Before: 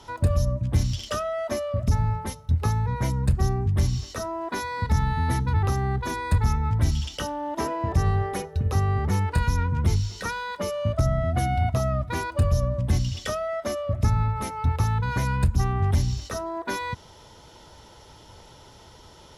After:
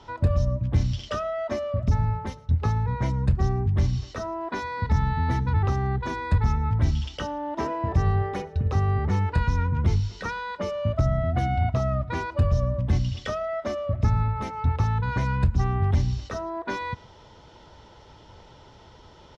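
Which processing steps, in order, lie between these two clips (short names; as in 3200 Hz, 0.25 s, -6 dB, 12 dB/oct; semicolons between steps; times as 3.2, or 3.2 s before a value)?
air absorption 140 m; on a send: echo 0.113 s -23.5 dB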